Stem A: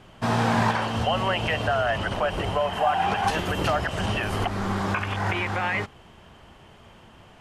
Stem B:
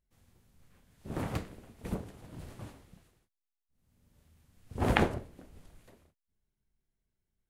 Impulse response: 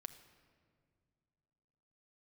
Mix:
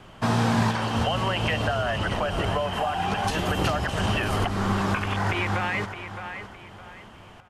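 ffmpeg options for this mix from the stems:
-filter_complex "[0:a]equalizer=f=1.2k:t=o:w=0.77:g=2.5,volume=2dB,asplit=2[a][b];[b]volume=-13dB[c];[1:a]volume=-16dB[d];[c]aecho=0:1:613|1226|1839|2452:1|0.31|0.0961|0.0298[e];[a][d][e]amix=inputs=3:normalize=0,acrossover=split=390|3000[f][g][h];[g]acompressor=threshold=-26dB:ratio=6[i];[f][i][h]amix=inputs=3:normalize=0"

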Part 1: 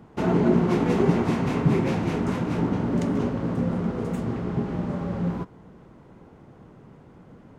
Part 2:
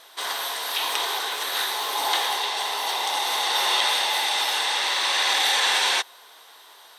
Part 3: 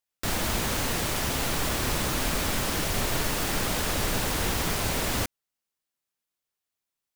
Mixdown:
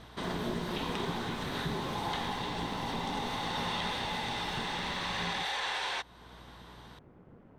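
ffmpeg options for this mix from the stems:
-filter_complex "[0:a]tremolo=f=230:d=0.75,lowpass=3k,acontrast=75,volume=-11dB[a];[1:a]aemphasis=mode=reproduction:type=75fm,aeval=exprs='val(0)+0.00251*(sin(2*PI*60*n/s)+sin(2*PI*2*60*n/s)/2+sin(2*PI*3*60*n/s)/3+sin(2*PI*4*60*n/s)/4+sin(2*PI*5*60*n/s)/5)':c=same,volume=-2.5dB[b];[2:a]acrossover=split=7600[c][d];[d]acompressor=threshold=-48dB:ratio=4:attack=1:release=60[e];[c][e]amix=inputs=2:normalize=0,volume=-15dB[f];[a][b][f]amix=inputs=3:normalize=0,acompressor=threshold=-45dB:ratio=1.5"

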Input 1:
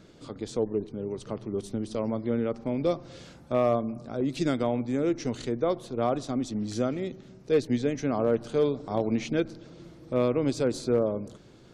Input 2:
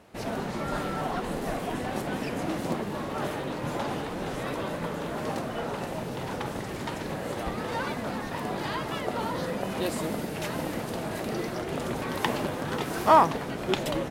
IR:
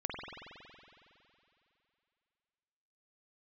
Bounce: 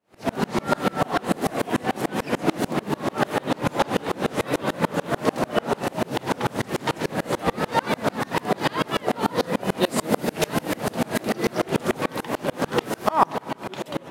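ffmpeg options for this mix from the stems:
-filter_complex "[0:a]adelay=1850,volume=-2dB[a];[1:a]highpass=130,dynaudnorm=f=100:g=5:m=14dB,volume=0.5dB,asplit=2[b][c];[c]volume=-14dB[d];[2:a]atrim=start_sample=2205[e];[d][e]afir=irnorm=-1:irlink=0[f];[a][b][f]amix=inputs=3:normalize=0,aeval=exprs='val(0)*pow(10,-31*if(lt(mod(-6.8*n/s,1),2*abs(-6.8)/1000),1-mod(-6.8*n/s,1)/(2*abs(-6.8)/1000),(mod(-6.8*n/s,1)-2*abs(-6.8)/1000)/(1-2*abs(-6.8)/1000))/20)':c=same"

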